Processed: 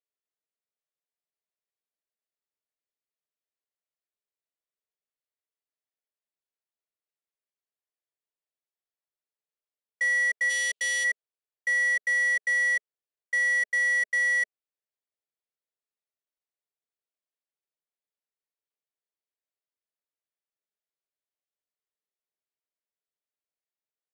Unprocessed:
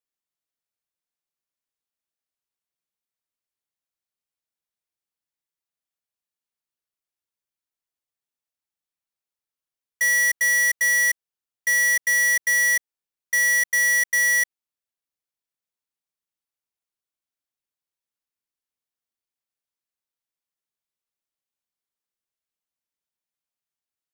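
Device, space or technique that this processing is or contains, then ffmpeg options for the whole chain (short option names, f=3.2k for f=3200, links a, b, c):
television speaker: -filter_complex "[0:a]highpass=f=200:w=0.5412,highpass=f=200:w=1.3066,equalizer=f=250:t=q:w=4:g=-4,equalizer=f=430:t=q:w=4:g=9,equalizer=f=620:t=q:w=4:g=8,equalizer=f=1.9k:t=q:w=4:g=4,equalizer=f=5.9k:t=q:w=4:g=-9,lowpass=f=8.1k:w=0.5412,lowpass=f=8.1k:w=1.3066,asplit=3[a][b][c];[a]afade=t=out:st=10.49:d=0.02[d];[b]highshelf=f=2.3k:t=q:w=3:g=8,afade=t=in:st=10.49:d=0.02,afade=t=out:st=11.03:d=0.02[e];[c]afade=t=in:st=11.03:d=0.02[f];[d][e][f]amix=inputs=3:normalize=0,volume=-8dB"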